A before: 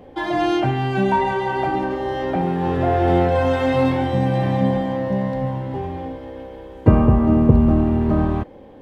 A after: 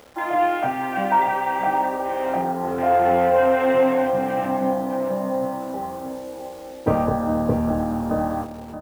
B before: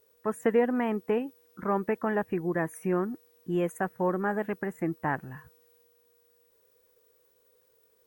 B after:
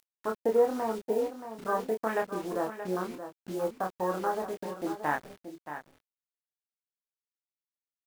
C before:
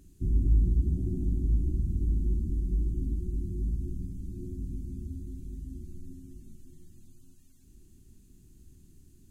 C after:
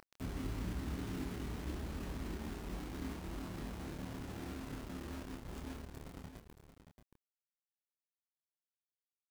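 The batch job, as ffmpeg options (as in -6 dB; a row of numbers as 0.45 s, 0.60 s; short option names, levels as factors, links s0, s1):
-filter_complex "[0:a]bandreject=f=380:w=12,afwtdn=0.0251,highpass=f=60:p=1,bass=f=250:g=-14,treble=f=4000:g=-12,acompressor=mode=upward:threshold=0.00891:ratio=2.5,acrusher=bits=7:mix=0:aa=0.000001,asplit=2[s0][s1];[s1]adelay=27,volume=0.631[s2];[s0][s2]amix=inputs=2:normalize=0,asplit=2[s3][s4];[s4]aecho=0:1:627:0.299[s5];[s3][s5]amix=inputs=2:normalize=0"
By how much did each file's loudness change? -2.5 LU, -2.0 LU, -12.5 LU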